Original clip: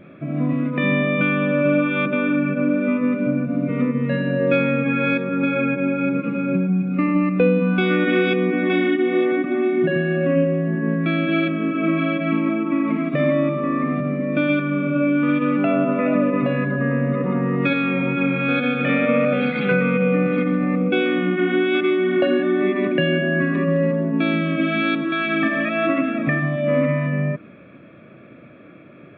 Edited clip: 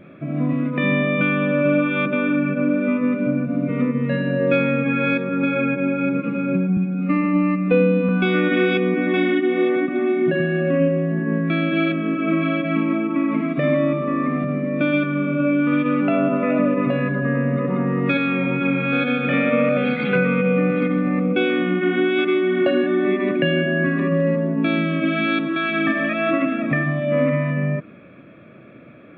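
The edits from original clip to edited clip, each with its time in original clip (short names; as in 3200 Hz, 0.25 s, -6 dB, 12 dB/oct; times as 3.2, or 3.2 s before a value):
6.77–7.65 stretch 1.5×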